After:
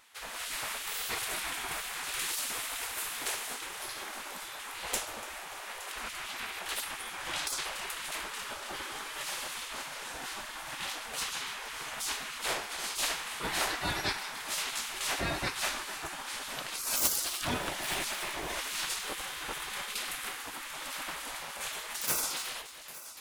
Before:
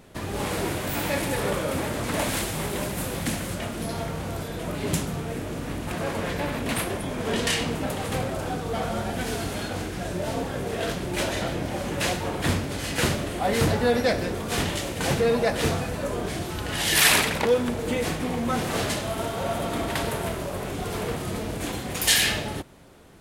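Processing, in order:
stylus tracing distortion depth 0.027 ms
echo machine with several playback heads 289 ms, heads first and third, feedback 59%, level −17 dB
gate on every frequency bin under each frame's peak −15 dB weak
level −1.5 dB

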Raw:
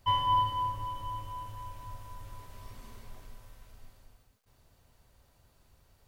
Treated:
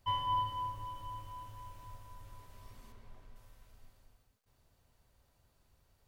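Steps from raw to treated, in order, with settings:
0:00.49–0:01.97: background noise pink −62 dBFS
0:02.92–0:03.36: high-shelf EQ 4,600 Hz −11.5 dB
level −6.5 dB

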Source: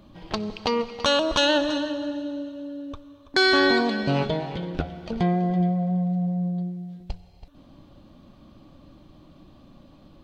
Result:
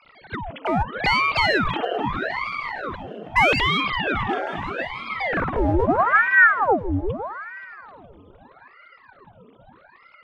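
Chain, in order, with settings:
three sine waves on the formant tracks
in parallel at −6 dB: gain into a clipping stage and back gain 25 dB
on the sum: echo whose low-pass opens from repeat to repeat 157 ms, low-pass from 200 Hz, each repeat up 1 octave, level −3 dB
ring modulator whose carrier an LFO sweeps 920 Hz, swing 90%, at 0.79 Hz
level +2.5 dB

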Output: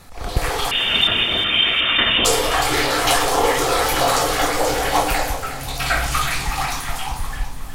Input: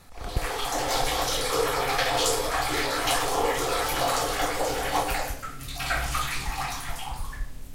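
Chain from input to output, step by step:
0:00.71–0:02.25: voice inversion scrambler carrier 3,600 Hz
on a send: echo with a time of its own for lows and highs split 390 Hz, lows 114 ms, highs 364 ms, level −12 dB
on the sum: level +7.5 dB

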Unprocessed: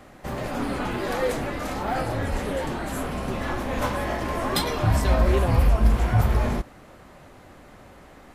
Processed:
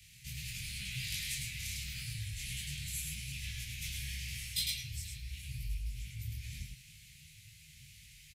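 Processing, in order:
Chebyshev band-stop filter 140–2,300 Hz, order 4
parametric band 210 Hz +7.5 dB 0.27 octaves
reversed playback
downward compressor 5 to 1, threshold −34 dBFS, peak gain reduction 18.5 dB
reversed playback
high-pass filter 84 Hz 6 dB per octave
high-shelf EQ 2,900 Hz +8.5 dB
on a send: single-tap delay 105 ms −3.5 dB
on the sum: micro pitch shift up and down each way 30 cents

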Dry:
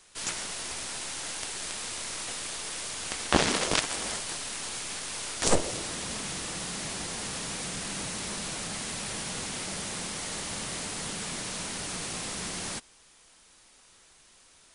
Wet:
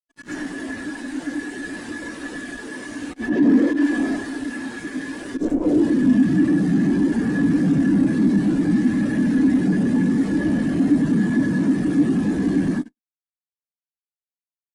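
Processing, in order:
every overlapping window played backwards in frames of 202 ms
high-shelf EQ 2,500 Hz −7 dB
volume swells 112 ms
hollow resonant body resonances 280/1,700 Hz, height 11 dB, ringing for 35 ms
fuzz pedal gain 54 dB, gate −51 dBFS
on a send: single-tap delay 108 ms −21.5 dB
on the sum: every bin expanded away from the loudest bin 2.5 to 1

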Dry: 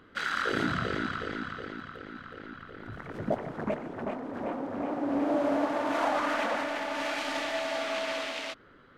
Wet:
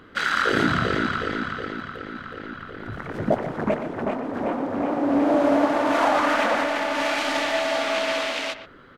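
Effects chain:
far-end echo of a speakerphone 120 ms, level −11 dB
level +8 dB

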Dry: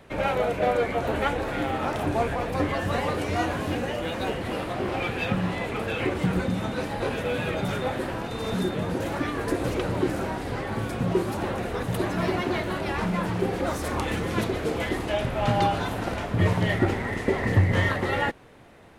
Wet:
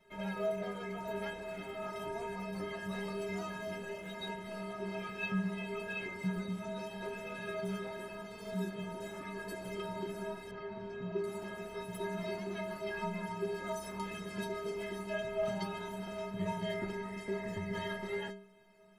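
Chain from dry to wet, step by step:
stiff-string resonator 190 Hz, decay 0.65 s, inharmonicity 0.03
0:10.51–0:11.24: high-frequency loss of the air 190 metres
level +4 dB

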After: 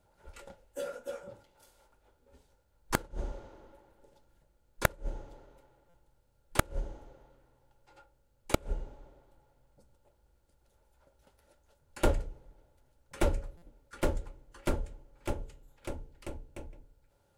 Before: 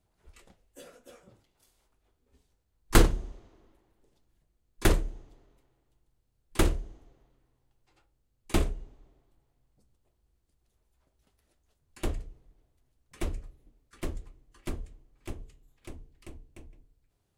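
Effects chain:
hollow resonant body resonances 560/860/1,400 Hz, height 14 dB, ringing for 40 ms
gate with flip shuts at −11 dBFS, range −34 dB
buffer that repeats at 0:05.89/0:13.57, samples 256, times 8
level +3.5 dB

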